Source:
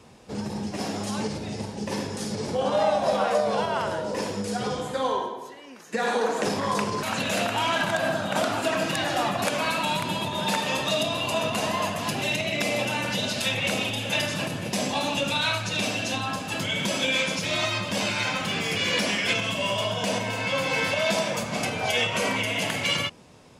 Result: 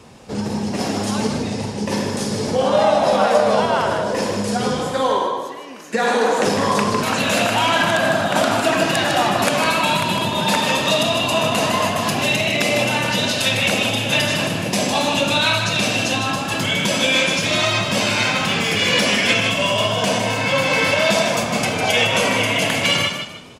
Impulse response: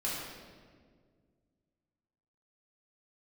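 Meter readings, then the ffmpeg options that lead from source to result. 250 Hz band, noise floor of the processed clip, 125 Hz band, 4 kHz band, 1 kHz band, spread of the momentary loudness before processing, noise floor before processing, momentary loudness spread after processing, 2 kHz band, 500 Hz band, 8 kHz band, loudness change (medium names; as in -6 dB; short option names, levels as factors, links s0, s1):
+8.0 dB, -28 dBFS, +8.0 dB, +8.0 dB, +8.0 dB, 7 LU, -42 dBFS, 7 LU, +8.0 dB, +8.0 dB, +8.0 dB, +8.0 dB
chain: -filter_complex "[0:a]asplit=5[s0][s1][s2][s3][s4];[s1]adelay=154,afreqshift=32,volume=0.447[s5];[s2]adelay=308,afreqshift=64,volume=0.143[s6];[s3]adelay=462,afreqshift=96,volume=0.0457[s7];[s4]adelay=616,afreqshift=128,volume=0.0146[s8];[s0][s5][s6][s7][s8]amix=inputs=5:normalize=0,asplit=2[s9][s10];[1:a]atrim=start_sample=2205,asetrate=70560,aresample=44100[s11];[s10][s11]afir=irnorm=-1:irlink=0,volume=0.168[s12];[s9][s12]amix=inputs=2:normalize=0,volume=2.11"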